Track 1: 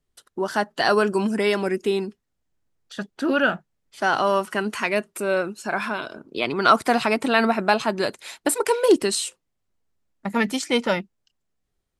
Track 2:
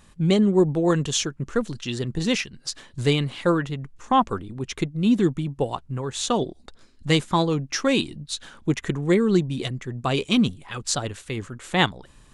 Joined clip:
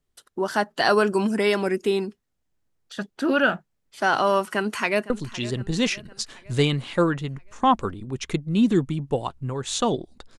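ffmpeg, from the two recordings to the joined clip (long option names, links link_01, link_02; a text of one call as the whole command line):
ffmpeg -i cue0.wav -i cue1.wav -filter_complex "[0:a]apad=whole_dur=10.38,atrim=end=10.38,atrim=end=5.102[link_01];[1:a]atrim=start=1.578:end=6.86[link_02];[link_01][link_02]acrossfade=duration=0.004:curve1=hsin:curve2=hsin,asplit=2[link_03][link_04];[link_04]afade=type=in:start_time=4.46:duration=0.01,afade=type=out:start_time=5.1:duration=0.01,aecho=0:1:510|1020|1530|2040|2550:0.141254|0.0776896|0.0427293|0.0235011|0.0129256[link_05];[link_03][link_05]amix=inputs=2:normalize=0" out.wav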